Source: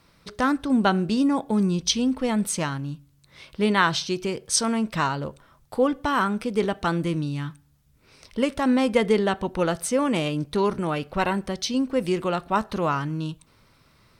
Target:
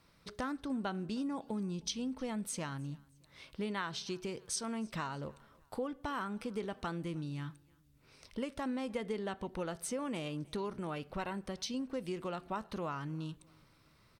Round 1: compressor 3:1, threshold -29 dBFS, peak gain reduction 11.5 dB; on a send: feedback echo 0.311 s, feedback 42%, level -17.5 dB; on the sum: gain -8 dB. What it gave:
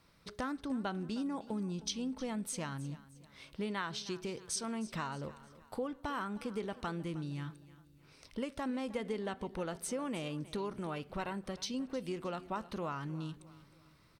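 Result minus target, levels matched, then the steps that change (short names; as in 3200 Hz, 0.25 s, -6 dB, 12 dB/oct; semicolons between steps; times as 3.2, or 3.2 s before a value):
echo-to-direct +8.5 dB
change: feedback echo 0.311 s, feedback 42%, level -26 dB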